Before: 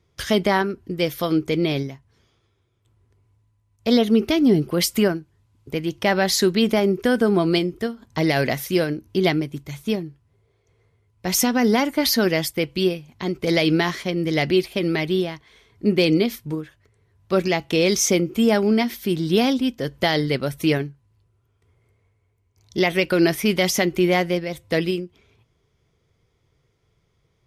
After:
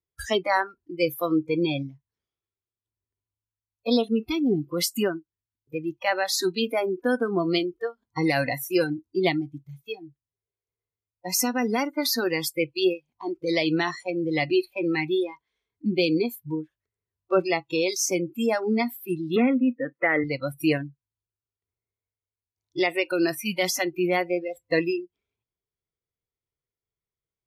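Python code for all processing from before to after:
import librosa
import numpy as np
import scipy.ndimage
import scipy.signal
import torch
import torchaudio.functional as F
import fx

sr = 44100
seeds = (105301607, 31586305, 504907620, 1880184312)

y = fx.chain(x, sr, fx.leveller(passes=1),
    fx.cabinet(low_hz=210.0, low_slope=12, high_hz=2500.0, hz=(240.0, 510.0, 830.0, 1300.0, 2000.0), db=(9, 4, -4, 6, 8)), at=(19.36, 20.24))
y = fx.noise_reduce_blind(y, sr, reduce_db=27)
y = fx.peak_eq(y, sr, hz=120.0, db=-5.0, octaves=1.7)
y = fx.rider(y, sr, range_db=4, speed_s=0.5)
y = F.gain(torch.from_numpy(y), -3.0).numpy()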